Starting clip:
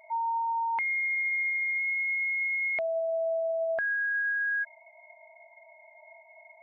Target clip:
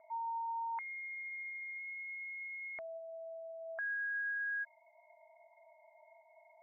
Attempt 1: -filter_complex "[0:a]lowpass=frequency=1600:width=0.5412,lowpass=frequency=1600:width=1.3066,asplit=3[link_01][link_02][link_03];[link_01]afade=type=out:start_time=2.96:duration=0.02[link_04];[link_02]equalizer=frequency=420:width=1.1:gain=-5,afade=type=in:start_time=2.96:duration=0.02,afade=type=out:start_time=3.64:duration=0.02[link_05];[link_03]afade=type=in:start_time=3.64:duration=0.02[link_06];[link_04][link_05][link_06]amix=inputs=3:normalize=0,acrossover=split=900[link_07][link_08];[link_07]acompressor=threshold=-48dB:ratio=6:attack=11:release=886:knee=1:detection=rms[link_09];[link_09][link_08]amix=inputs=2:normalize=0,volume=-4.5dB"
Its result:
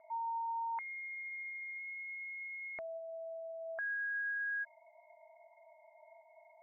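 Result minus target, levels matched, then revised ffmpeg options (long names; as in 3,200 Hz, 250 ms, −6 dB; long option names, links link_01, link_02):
downward compressor: peak gain reduction −7 dB
-filter_complex "[0:a]lowpass=frequency=1600:width=0.5412,lowpass=frequency=1600:width=1.3066,asplit=3[link_01][link_02][link_03];[link_01]afade=type=out:start_time=2.96:duration=0.02[link_04];[link_02]equalizer=frequency=420:width=1.1:gain=-5,afade=type=in:start_time=2.96:duration=0.02,afade=type=out:start_time=3.64:duration=0.02[link_05];[link_03]afade=type=in:start_time=3.64:duration=0.02[link_06];[link_04][link_05][link_06]amix=inputs=3:normalize=0,acrossover=split=900[link_07][link_08];[link_07]acompressor=threshold=-56.5dB:ratio=6:attack=11:release=886:knee=1:detection=rms[link_09];[link_09][link_08]amix=inputs=2:normalize=0,volume=-4.5dB"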